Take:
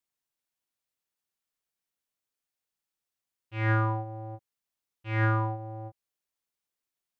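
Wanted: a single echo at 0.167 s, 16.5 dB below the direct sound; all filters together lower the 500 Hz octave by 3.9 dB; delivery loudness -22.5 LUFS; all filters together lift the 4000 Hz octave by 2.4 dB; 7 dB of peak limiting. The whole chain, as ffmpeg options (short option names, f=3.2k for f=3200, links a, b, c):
-af "equalizer=f=500:t=o:g=-5,equalizer=f=4k:t=o:g=3.5,alimiter=limit=-24dB:level=0:latency=1,aecho=1:1:167:0.15,volume=12dB"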